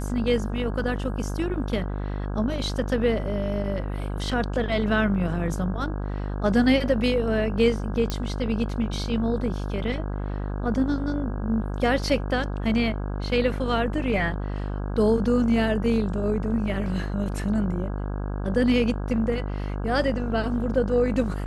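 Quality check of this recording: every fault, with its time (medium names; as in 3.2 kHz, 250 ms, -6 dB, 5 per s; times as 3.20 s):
buzz 50 Hz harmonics 33 -29 dBFS
8.10 s: pop -13 dBFS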